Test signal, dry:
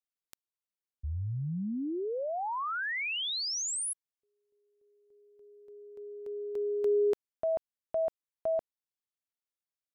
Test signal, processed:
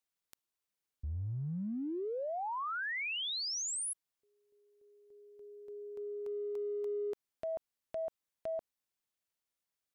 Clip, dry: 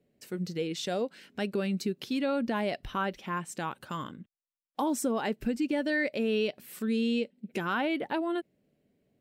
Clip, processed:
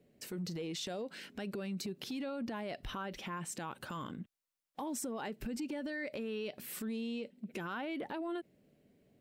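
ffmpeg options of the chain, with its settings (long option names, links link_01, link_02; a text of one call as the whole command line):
ffmpeg -i in.wav -af "acompressor=threshold=-40dB:ratio=6:attack=0.53:release=38:knee=6:detection=rms,volume=4dB" out.wav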